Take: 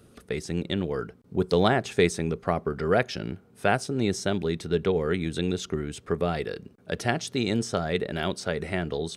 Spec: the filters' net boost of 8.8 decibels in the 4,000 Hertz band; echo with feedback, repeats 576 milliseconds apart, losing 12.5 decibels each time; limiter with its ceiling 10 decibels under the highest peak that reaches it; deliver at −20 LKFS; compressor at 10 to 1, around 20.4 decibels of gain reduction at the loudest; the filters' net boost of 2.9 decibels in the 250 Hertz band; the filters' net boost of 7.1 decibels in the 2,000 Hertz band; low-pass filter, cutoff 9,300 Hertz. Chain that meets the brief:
low-pass filter 9,300 Hz
parametric band 250 Hz +4 dB
parametric band 2,000 Hz +7 dB
parametric band 4,000 Hz +8.5 dB
downward compressor 10 to 1, threshold −35 dBFS
brickwall limiter −28.5 dBFS
repeating echo 576 ms, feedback 24%, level −12.5 dB
level +21.5 dB

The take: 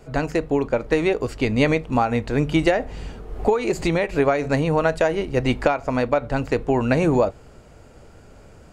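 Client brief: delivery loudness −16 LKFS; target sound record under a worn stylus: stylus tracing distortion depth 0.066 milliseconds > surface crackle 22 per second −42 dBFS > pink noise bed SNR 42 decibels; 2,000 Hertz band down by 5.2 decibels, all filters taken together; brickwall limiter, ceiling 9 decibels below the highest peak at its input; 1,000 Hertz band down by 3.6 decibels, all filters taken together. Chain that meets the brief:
parametric band 1,000 Hz −4 dB
parametric band 2,000 Hz −5.5 dB
brickwall limiter −15.5 dBFS
stylus tracing distortion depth 0.066 ms
surface crackle 22 per second −42 dBFS
pink noise bed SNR 42 dB
level +10 dB

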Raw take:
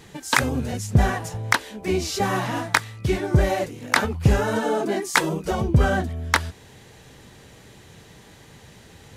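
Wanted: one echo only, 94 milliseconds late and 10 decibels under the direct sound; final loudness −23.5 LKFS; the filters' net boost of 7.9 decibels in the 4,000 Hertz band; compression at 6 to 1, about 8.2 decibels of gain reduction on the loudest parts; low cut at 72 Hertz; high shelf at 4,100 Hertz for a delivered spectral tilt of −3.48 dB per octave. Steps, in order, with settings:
high-pass filter 72 Hz
parametric band 4,000 Hz +5.5 dB
high-shelf EQ 4,100 Hz +7 dB
downward compressor 6 to 1, threshold −23 dBFS
single-tap delay 94 ms −10 dB
level +4 dB

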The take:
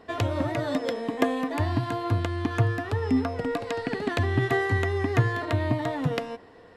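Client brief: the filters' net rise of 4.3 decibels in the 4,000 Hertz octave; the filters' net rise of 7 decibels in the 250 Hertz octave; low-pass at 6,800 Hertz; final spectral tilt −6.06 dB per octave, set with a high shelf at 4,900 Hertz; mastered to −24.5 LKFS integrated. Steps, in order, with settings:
low-pass filter 6,800 Hz
parametric band 250 Hz +8 dB
parametric band 4,000 Hz +3.5 dB
high-shelf EQ 4,900 Hz +5.5 dB
level −1 dB

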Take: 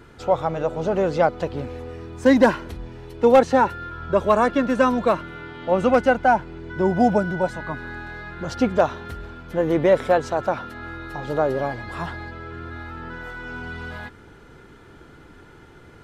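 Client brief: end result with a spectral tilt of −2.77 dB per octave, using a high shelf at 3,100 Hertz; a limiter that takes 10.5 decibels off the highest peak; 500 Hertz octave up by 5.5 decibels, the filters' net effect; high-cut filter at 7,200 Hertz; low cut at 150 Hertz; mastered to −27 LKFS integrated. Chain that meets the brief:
high-pass filter 150 Hz
low-pass filter 7,200 Hz
parametric band 500 Hz +6.5 dB
high-shelf EQ 3,100 Hz −8.5 dB
level −5.5 dB
brickwall limiter −15 dBFS

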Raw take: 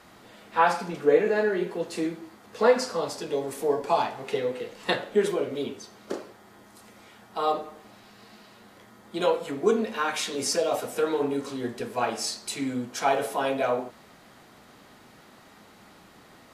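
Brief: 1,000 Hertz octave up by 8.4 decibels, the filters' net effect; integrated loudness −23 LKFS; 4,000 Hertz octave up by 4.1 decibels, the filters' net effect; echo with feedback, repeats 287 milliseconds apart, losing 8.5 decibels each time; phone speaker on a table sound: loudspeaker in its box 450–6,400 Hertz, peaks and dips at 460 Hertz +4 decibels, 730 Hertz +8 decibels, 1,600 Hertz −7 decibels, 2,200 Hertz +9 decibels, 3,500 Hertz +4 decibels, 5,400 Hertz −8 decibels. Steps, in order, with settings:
loudspeaker in its box 450–6,400 Hz, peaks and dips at 460 Hz +4 dB, 730 Hz +8 dB, 1,600 Hz −7 dB, 2,200 Hz +9 dB, 3,500 Hz +4 dB, 5,400 Hz −8 dB
parametric band 1,000 Hz +6 dB
parametric band 4,000 Hz +3.5 dB
repeating echo 287 ms, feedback 38%, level −8.5 dB
level −1 dB

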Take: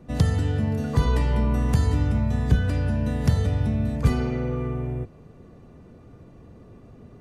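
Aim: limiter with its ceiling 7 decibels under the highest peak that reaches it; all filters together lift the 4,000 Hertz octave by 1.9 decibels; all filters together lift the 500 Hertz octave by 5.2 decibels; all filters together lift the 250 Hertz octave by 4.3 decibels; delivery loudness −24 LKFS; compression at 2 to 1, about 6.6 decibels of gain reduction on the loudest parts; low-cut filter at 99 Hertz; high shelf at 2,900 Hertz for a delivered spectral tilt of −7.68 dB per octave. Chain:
high-pass filter 99 Hz
parametric band 250 Hz +4.5 dB
parametric band 500 Hz +5 dB
high-shelf EQ 2,900 Hz −4 dB
parametric band 4,000 Hz +5.5 dB
downward compressor 2 to 1, threshold −27 dBFS
level +6 dB
brickwall limiter −15 dBFS

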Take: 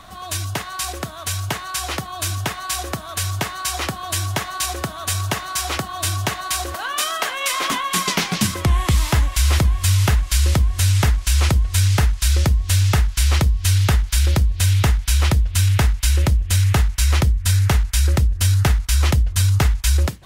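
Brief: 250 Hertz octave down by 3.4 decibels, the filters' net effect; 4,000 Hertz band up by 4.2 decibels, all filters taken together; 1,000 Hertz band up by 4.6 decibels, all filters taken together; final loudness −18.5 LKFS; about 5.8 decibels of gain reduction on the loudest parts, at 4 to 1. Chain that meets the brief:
parametric band 250 Hz −6 dB
parametric band 1,000 Hz +5.5 dB
parametric band 4,000 Hz +5 dB
downward compressor 4 to 1, threshold −19 dBFS
level +4.5 dB

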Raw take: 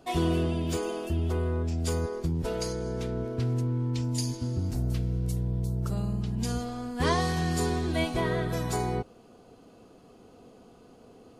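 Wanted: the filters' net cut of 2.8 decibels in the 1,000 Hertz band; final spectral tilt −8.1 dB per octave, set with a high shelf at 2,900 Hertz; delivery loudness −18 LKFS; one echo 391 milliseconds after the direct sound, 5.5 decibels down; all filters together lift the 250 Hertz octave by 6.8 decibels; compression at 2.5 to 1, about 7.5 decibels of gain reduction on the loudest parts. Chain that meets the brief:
parametric band 250 Hz +9 dB
parametric band 1,000 Hz −4 dB
high-shelf EQ 2,900 Hz −6.5 dB
downward compressor 2.5 to 1, threshold −30 dBFS
single-tap delay 391 ms −5.5 dB
level +13.5 dB

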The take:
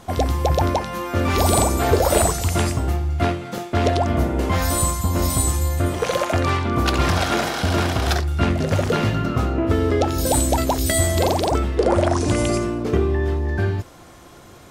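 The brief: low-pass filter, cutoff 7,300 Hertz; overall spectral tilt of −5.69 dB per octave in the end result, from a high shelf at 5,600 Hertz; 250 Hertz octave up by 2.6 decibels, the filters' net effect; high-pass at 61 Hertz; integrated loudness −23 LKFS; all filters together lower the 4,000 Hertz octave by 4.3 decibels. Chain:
high-pass filter 61 Hz
low-pass filter 7,300 Hz
parametric band 250 Hz +3.5 dB
parametric band 4,000 Hz −7 dB
high-shelf EQ 5,600 Hz +4.5 dB
level −2.5 dB

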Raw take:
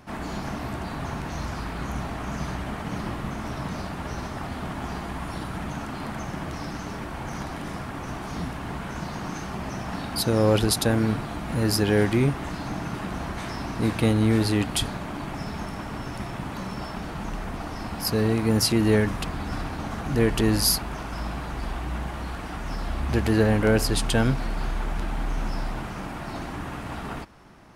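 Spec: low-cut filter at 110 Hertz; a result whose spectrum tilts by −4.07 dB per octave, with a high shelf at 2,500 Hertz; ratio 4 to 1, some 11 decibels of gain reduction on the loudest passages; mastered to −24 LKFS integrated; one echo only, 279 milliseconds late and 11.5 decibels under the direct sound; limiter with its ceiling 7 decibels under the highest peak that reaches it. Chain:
high-pass filter 110 Hz
high-shelf EQ 2,500 Hz +8 dB
downward compressor 4 to 1, threshold −25 dBFS
brickwall limiter −18.5 dBFS
single-tap delay 279 ms −11.5 dB
level +7.5 dB

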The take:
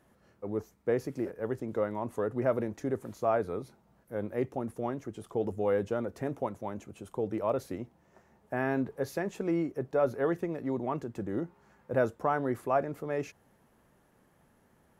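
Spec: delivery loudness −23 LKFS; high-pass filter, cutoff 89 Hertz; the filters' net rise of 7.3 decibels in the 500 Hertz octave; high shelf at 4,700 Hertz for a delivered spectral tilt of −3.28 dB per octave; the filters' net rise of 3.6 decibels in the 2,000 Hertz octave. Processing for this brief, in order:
high-pass filter 89 Hz
parametric band 500 Hz +8.5 dB
parametric band 2,000 Hz +3.5 dB
high-shelf EQ 4,700 Hz +5 dB
level +4 dB

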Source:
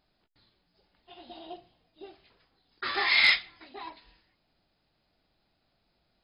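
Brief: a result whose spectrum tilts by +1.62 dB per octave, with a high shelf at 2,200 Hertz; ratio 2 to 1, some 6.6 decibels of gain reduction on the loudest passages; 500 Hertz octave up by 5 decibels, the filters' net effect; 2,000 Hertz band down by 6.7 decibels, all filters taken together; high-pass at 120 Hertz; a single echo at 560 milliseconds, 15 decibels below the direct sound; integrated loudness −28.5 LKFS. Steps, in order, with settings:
high-pass filter 120 Hz
parametric band 500 Hz +8 dB
parametric band 2,000 Hz −5.5 dB
high-shelf EQ 2,200 Hz −4 dB
downward compressor 2 to 1, threshold −35 dBFS
single-tap delay 560 ms −15 dB
level +9.5 dB

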